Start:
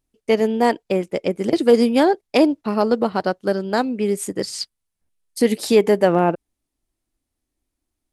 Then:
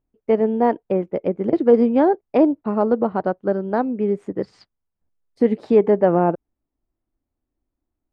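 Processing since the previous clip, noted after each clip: low-pass 1.2 kHz 12 dB/octave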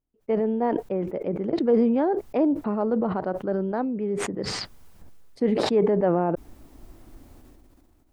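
decay stretcher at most 22 dB/s; trim -7.5 dB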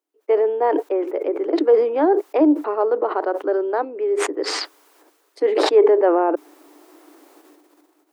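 rippled Chebyshev high-pass 290 Hz, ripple 3 dB; trim +8.5 dB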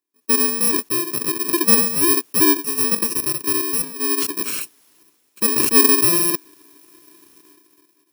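bit-reversed sample order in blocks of 64 samples

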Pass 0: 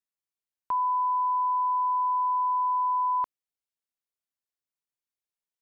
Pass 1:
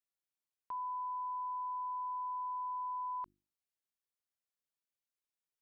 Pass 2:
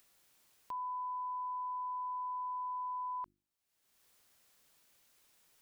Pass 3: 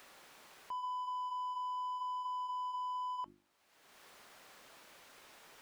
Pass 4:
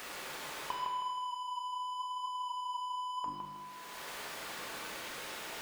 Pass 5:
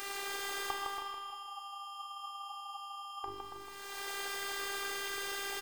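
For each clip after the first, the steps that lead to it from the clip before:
hum notches 50/100/150/200/250/300/350 Hz; peak limiter -32 dBFS, peak gain reduction 9.5 dB; trim -4 dB
upward compressor, threshold -50 dBFS
peak limiter -45 dBFS, peak gain reduction 11 dB; overdrive pedal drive 20 dB, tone 1 kHz, clips at -45 dBFS; flange 0.85 Hz, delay 3 ms, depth 2.4 ms, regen -81%; trim +15.5 dB
compression, threshold -43 dBFS, peak gain reduction 6 dB; on a send: bucket-brigade echo 159 ms, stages 4096, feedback 37%, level -5 dB; on the sum: two-slope reverb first 0.82 s, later 2.6 s, from -24 dB, DRR 0 dB; trim +12 dB
robot voice 396 Hz; delay 280 ms -7 dB; trim +6 dB

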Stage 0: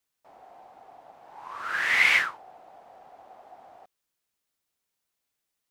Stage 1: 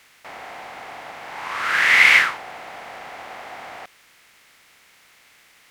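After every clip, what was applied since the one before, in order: spectral levelling over time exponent 0.6; trim +6 dB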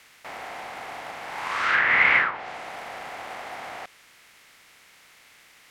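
short-mantissa float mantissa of 2-bit; low-pass that closes with the level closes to 1.6 kHz, closed at -14.5 dBFS

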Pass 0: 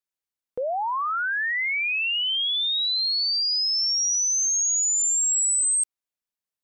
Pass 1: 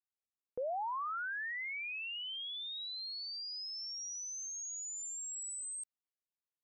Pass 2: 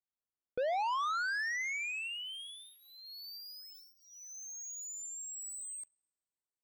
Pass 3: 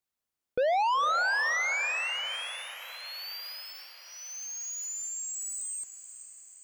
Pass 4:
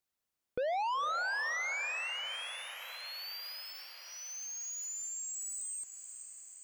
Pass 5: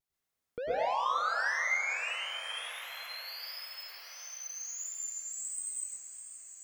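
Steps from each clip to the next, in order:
treble shelf 2.1 kHz -12 dB; trim -9 dB
local Wiener filter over 15 samples; two-slope reverb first 0.74 s, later 3 s, from -25 dB, DRR 18.5 dB; waveshaping leveller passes 2; trim +3 dB
echo that smears into a reverb 487 ms, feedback 56%, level -12 dB; trim +7 dB
compression 1.5:1, threshold -46 dBFS, peak gain reduction 7.5 dB
vibrato 1.5 Hz 66 cents; plate-style reverb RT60 0.66 s, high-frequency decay 0.6×, pre-delay 90 ms, DRR -5.5 dB; trim -4 dB

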